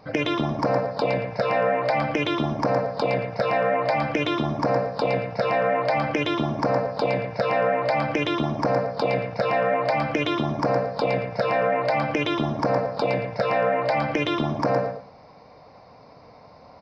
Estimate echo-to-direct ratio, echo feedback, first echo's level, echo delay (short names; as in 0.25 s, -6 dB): -7.0 dB, 17%, -7.0 dB, 0.114 s